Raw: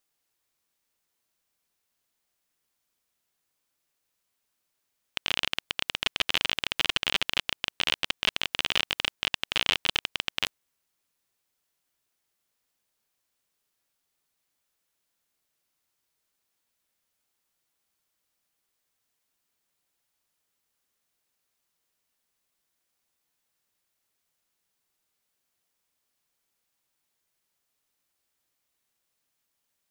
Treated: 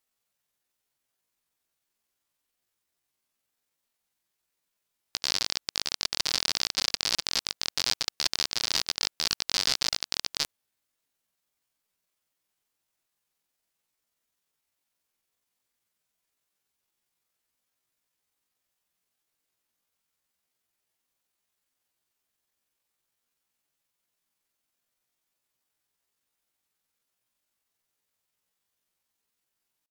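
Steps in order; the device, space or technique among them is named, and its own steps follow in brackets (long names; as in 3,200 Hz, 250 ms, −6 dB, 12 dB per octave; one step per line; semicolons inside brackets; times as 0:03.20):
chipmunk voice (pitch shifter +8 semitones)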